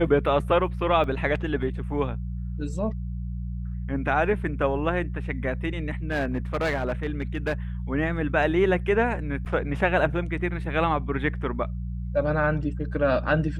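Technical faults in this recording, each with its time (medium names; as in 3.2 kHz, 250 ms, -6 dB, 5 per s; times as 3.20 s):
hum 60 Hz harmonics 3 -31 dBFS
1.04 s: dropout 2.4 ms
6.10–7.54 s: clipped -21 dBFS
9.45–9.46 s: dropout 8.4 ms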